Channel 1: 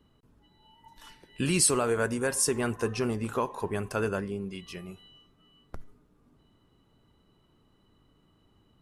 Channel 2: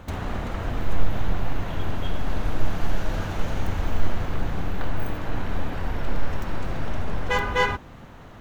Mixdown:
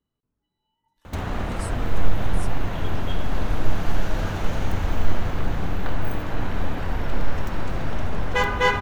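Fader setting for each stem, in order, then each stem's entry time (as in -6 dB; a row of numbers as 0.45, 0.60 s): -18.5, +2.0 dB; 0.00, 1.05 s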